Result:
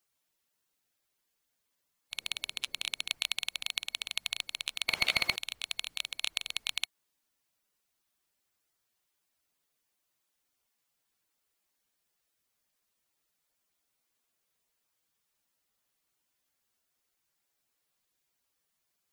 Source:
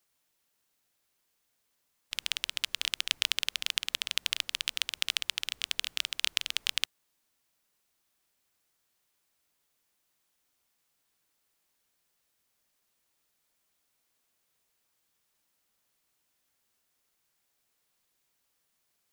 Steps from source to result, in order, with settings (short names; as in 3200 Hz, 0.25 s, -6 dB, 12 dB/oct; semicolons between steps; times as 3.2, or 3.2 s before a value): bin magnitudes rounded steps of 15 dB; 2.17–3.09 band noise 73–570 Hz -65 dBFS; 4.88–5.36 overdrive pedal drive 34 dB, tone 2400 Hz, clips at -4.5 dBFS; gain -3.5 dB